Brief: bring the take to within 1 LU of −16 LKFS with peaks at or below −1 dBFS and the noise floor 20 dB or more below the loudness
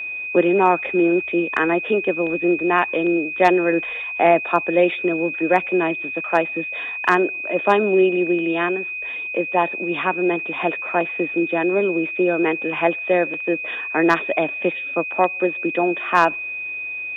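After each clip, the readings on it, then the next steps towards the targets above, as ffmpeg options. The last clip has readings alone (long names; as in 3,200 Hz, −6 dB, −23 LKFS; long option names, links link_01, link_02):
interfering tone 2,500 Hz; level of the tone −26 dBFS; integrated loudness −20.0 LKFS; sample peak −3.0 dBFS; target loudness −16.0 LKFS
→ -af "bandreject=frequency=2500:width=30"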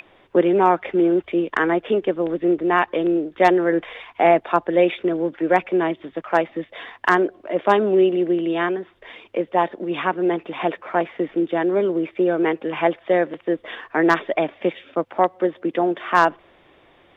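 interfering tone none found; integrated loudness −20.5 LKFS; sample peak −3.0 dBFS; target loudness −16.0 LKFS
→ -af "volume=4.5dB,alimiter=limit=-1dB:level=0:latency=1"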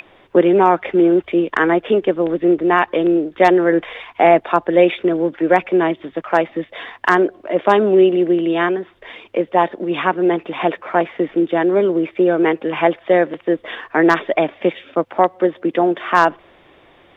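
integrated loudness −16.5 LKFS; sample peak −1.0 dBFS; background noise floor −50 dBFS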